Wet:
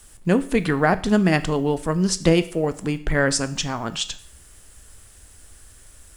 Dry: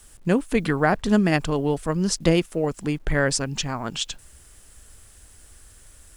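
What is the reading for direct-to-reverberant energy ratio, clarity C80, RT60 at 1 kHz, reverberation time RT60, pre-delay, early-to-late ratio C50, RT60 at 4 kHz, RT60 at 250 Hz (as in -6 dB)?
11.5 dB, 20.0 dB, 0.55 s, 0.55 s, 10 ms, 16.5 dB, 0.55 s, 0.60 s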